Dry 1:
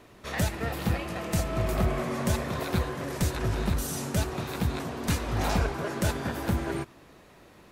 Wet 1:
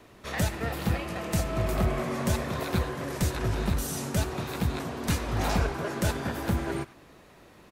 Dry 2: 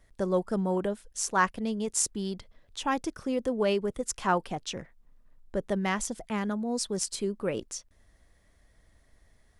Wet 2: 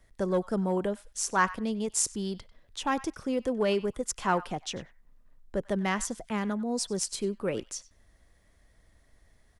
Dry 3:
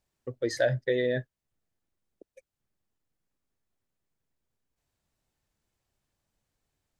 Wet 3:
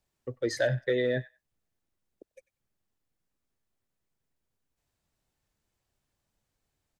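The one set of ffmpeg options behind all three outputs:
-filter_complex "[0:a]acrossover=split=510|790[a][b][c];[b]asoftclip=type=hard:threshold=-32dB[d];[c]asplit=2[e][f];[f]adelay=95,lowpass=f=2.8k:p=1,volume=-14dB,asplit=2[g][h];[h]adelay=95,lowpass=f=2.8k:p=1,volume=0.18[i];[e][g][i]amix=inputs=3:normalize=0[j];[a][d][j]amix=inputs=3:normalize=0"

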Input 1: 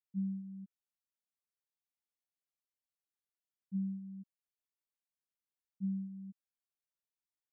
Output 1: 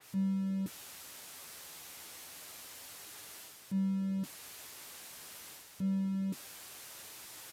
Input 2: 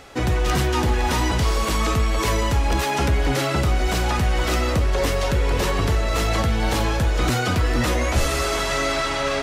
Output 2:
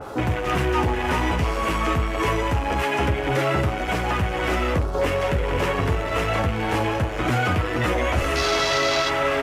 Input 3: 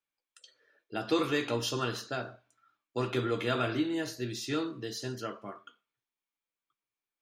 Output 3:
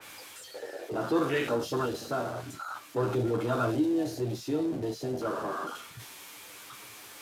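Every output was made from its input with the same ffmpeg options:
-af "aeval=exprs='val(0)+0.5*0.0531*sgn(val(0))':c=same,afwtdn=0.0447,highpass=f=85:p=1,equalizer=f=210:w=4.4:g=-4.5,areverse,acompressor=mode=upward:threshold=-39dB:ratio=2.5,areverse,flanger=delay=9.2:depth=3.2:regen=-38:speed=0.28:shape=sinusoidal,aresample=32000,aresample=44100,adynamicequalizer=threshold=0.00631:dfrequency=3100:dqfactor=0.7:tfrequency=3100:tqfactor=0.7:attack=5:release=100:ratio=0.375:range=3:mode=boostabove:tftype=highshelf,volume=3dB"

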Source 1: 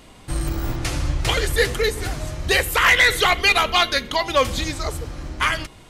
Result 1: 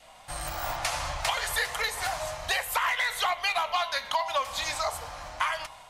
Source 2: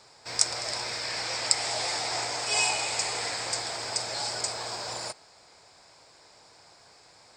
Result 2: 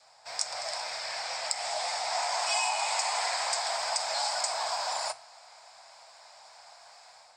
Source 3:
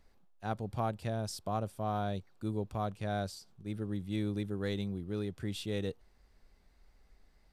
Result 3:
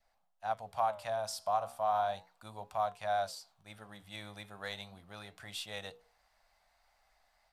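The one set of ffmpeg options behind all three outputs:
-filter_complex "[0:a]acrossover=split=630[a][b];[b]dynaudnorm=f=340:g=3:m=6.5dB[c];[a][c]amix=inputs=2:normalize=0,lowshelf=f=500:t=q:w=3:g=-10.5,bandreject=f=60:t=h:w=6,bandreject=f=120:t=h:w=6,bandreject=f=180:t=h:w=6,bandreject=f=240:t=h:w=6,bandreject=f=300:t=h:w=6,bandreject=f=360:t=h:w=6,bandreject=f=420:t=h:w=6,bandreject=f=480:t=h:w=6,flanger=delay=6.2:depth=9.9:regen=-81:speed=0.35:shape=sinusoidal,adynamicequalizer=threshold=0.0126:dfrequency=990:dqfactor=3.8:tfrequency=990:tqfactor=3.8:attack=5:release=100:ratio=0.375:range=3.5:mode=boostabove:tftype=bell,asoftclip=type=tanh:threshold=-4dB,acompressor=threshold=-25dB:ratio=6" -ar 48000 -c:a libmp3lame -b:a 96k

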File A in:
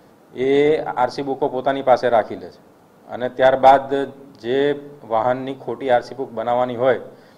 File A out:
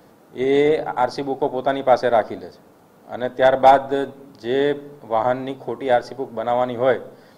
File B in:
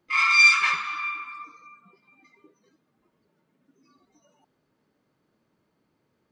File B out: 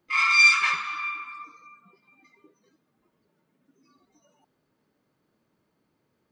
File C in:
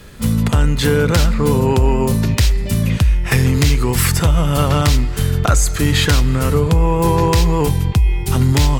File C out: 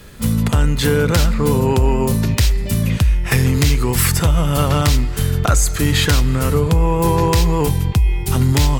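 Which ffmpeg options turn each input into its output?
-af "highshelf=f=11k:g=5,volume=-1dB"

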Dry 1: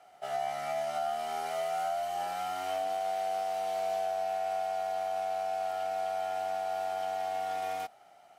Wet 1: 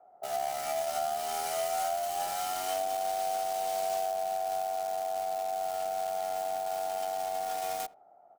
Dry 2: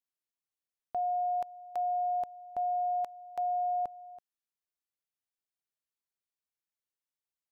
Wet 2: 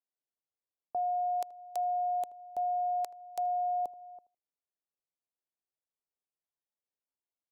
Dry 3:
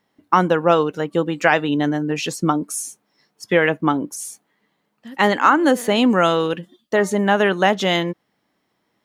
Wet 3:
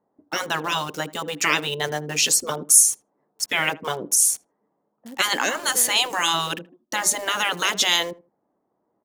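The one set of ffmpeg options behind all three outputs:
-filter_complex "[0:a]afftfilt=real='re*lt(hypot(re,im),0.447)':imag='im*lt(hypot(re,im),0.447)':win_size=1024:overlap=0.75,bass=f=250:g=-9,treble=f=4k:g=13,acrossover=split=560|1000[a][b][c];[c]aeval=exprs='val(0)*gte(abs(val(0)),0.0126)':c=same[d];[a][b][d]amix=inputs=3:normalize=0,asplit=2[e][f];[f]adelay=79,lowpass=f=1.1k:p=1,volume=-18dB,asplit=2[g][h];[h]adelay=79,lowpass=f=1.1k:p=1,volume=0.22[i];[e][g][i]amix=inputs=3:normalize=0,volume=1.5dB"

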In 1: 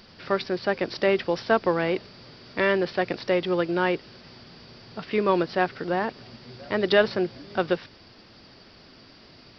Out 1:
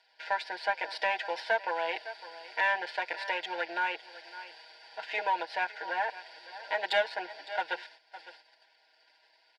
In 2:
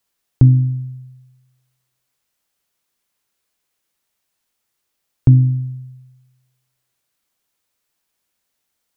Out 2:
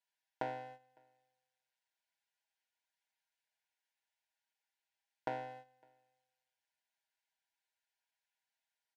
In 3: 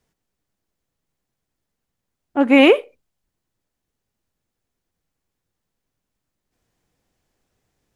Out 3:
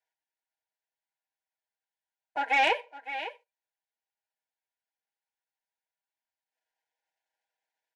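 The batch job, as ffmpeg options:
-af "aeval=exprs='if(lt(val(0),0),0.447*val(0),val(0))':c=same,highpass=f=800:w=0.5412,highpass=f=800:w=1.3066,aemphasis=mode=reproduction:type=riaa,aecho=1:1:6.3:0.9,aecho=1:1:557:0.112,acompressor=threshold=-34dB:ratio=1.5,asuperstop=centerf=1200:order=8:qfactor=3.2,asoftclip=type=tanh:threshold=-18.5dB,agate=range=-12dB:threshold=-56dB:ratio=16:detection=peak,volume=4dB"

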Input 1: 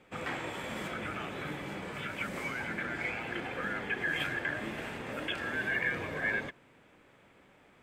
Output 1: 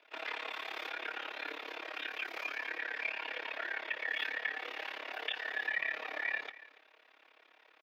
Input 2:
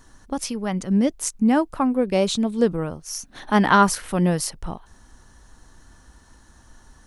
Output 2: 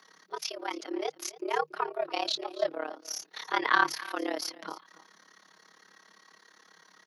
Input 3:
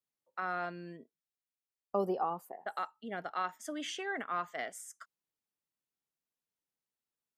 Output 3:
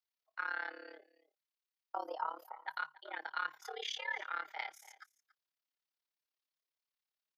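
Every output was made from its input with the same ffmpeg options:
-filter_complex "[0:a]highpass=f=790:p=1,highshelf=f=5.6k:t=q:w=1.5:g=-10.5,aecho=1:1:6.3:0.5,asplit=2[a][b];[b]acompressor=threshold=-35dB:ratio=6,volume=2dB[c];[a][c]amix=inputs=2:normalize=0,tremolo=f=35:d=0.889,aecho=1:1:283:0.119,aexciter=amount=1.2:drive=3.6:freq=4.7k,aeval=exprs='1*(cos(1*acos(clip(val(0)/1,-1,1)))-cos(1*PI/2))+0.0224*(cos(4*acos(clip(val(0)/1,-1,1)))-cos(4*PI/2))':c=same,afreqshift=150,volume=-4.5dB"

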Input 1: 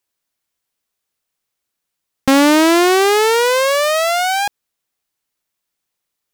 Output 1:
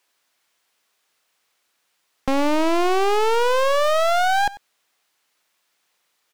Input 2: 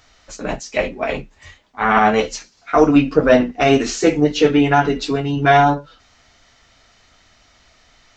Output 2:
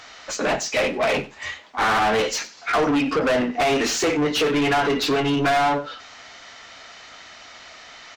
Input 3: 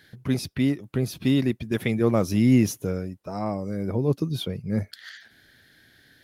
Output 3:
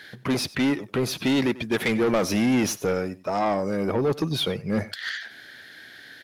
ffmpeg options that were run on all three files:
-filter_complex "[0:a]acompressor=threshold=-15dB:ratio=5,asplit=2[a][b];[b]highpass=f=720:p=1,volume=28dB,asoftclip=type=tanh:threshold=-4.5dB[c];[a][c]amix=inputs=2:normalize=0,lowpass=f=3.7k:p=1,volume=-6dB,asplit=2[d][e];[e]aecho=0:1:94:0.112[f];[d][f]amix=inputs=2:normalize=0,volume=-8dB"

